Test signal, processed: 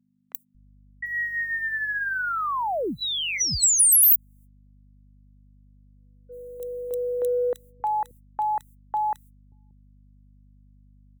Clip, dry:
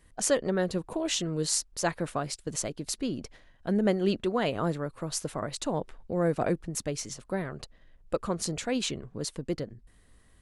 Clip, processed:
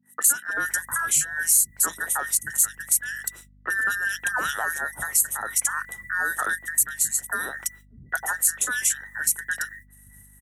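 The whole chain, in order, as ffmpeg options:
-filter_complex "[0:a]afftfilt=real='real(if(between(b,1,1012),(2*floor((b-1)/92)+1)*92-b,b),0)':imag='imag(if(between(b,1,1012),(2*floor((b-1)/92)+1)*92-b,b),0)*if(between(b,1,1012),-1,1)':win_size=2048:overlap=0.75,aexciter=amount=15.3:drive=4.7:freq=7.1k,agate=range=-45dB:threshold=-47dB:ratio=16:detection=peak,acompressor=threshold=-29dB:ratio=2.5,highpass=f=46:w=0.5412,highpass=f=46:w=1.3066,asoftclip=type=tanh:threshold=-12.5dB,aeval=exprs='val(0)+0.001*(sin(2*PI*50*n/s)+sin(2*PI*2*50*n/s)/2+sin(2*PI*3*50*n/s)/3+sin(2*PI*4*50*n/s)/4+sin(2*PI*5*50*n/s)/5)':c=same,acontrast=73,acrossover=split=190|2300[a][b][c];[c]adelay=30[d];[a]adelay=580[e];[e][b][d]amix=inputs=3:normalize=0"

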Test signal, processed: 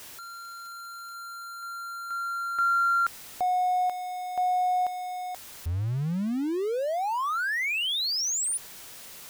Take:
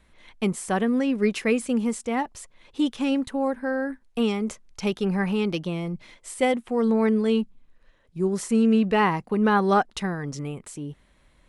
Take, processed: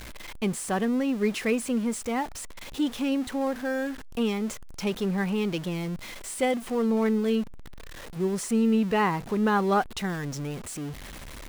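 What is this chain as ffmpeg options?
-af "aeval=exprs='val(0)+0.5*0.0266*sgn(val(0))':c=same,volume=-4dB"

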